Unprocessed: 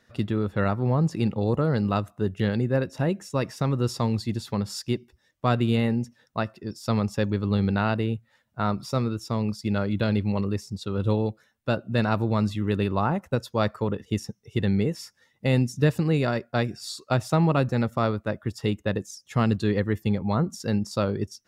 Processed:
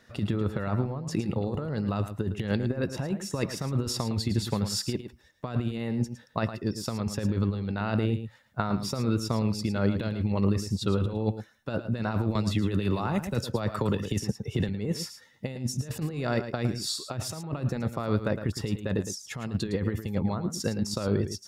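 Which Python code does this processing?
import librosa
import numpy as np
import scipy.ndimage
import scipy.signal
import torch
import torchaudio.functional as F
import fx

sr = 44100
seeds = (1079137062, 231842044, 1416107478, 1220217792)

y = fx.over_compress(x, sr, threshold_db=-27.0, ratio=-0.5)
y = y + 10.0 ** (-10.5 / 20.0) * np.pad(y, (int(110 * sr / 1000.0), 0))[:len(y)]
y = fx.band_squash(y, sr, depth_pct=100, at=(12.35, 14.69))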